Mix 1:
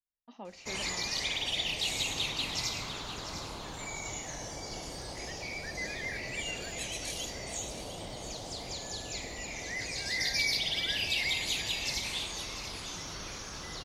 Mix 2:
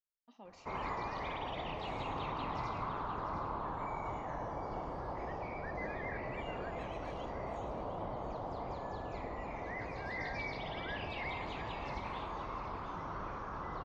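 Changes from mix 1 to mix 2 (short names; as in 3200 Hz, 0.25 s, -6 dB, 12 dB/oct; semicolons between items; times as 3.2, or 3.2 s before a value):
speech -9.0 dB; background: add synth low-pass 1100 Hz, resonance Q 2.7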